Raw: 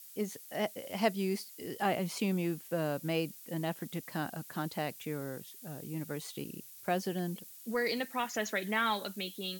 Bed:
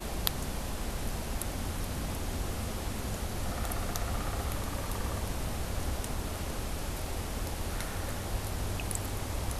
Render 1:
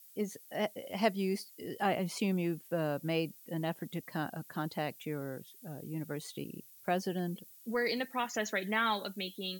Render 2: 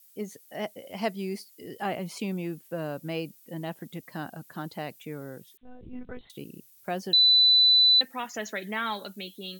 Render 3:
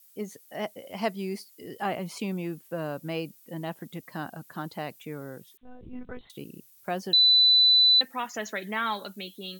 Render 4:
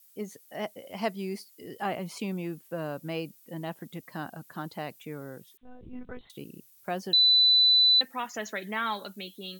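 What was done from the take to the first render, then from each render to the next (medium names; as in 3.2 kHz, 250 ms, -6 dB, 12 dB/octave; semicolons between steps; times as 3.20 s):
noise reduction 8 dB, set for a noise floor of -52 dBFS
5.57–6.30 s: monotone LPC vocoder at 8 kHz 250 Hz; 7.13–8.01 s: bleep 3.99 kHz -15.5 dBFS
peaking EQ 1.1 kHz +3.5 dB 0.77 oct
trim -1.5 dB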